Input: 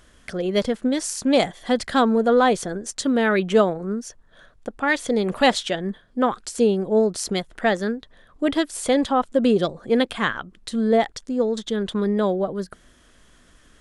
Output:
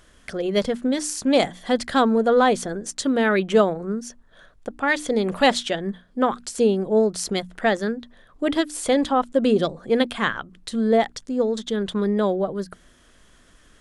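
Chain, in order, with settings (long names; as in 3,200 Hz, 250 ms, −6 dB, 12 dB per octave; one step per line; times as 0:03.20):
mains-hum notches 60/120/180/240/300 Hz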